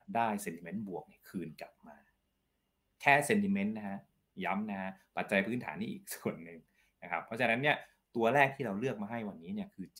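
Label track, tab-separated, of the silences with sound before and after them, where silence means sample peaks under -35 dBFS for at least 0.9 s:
1.630000	3.040000	silence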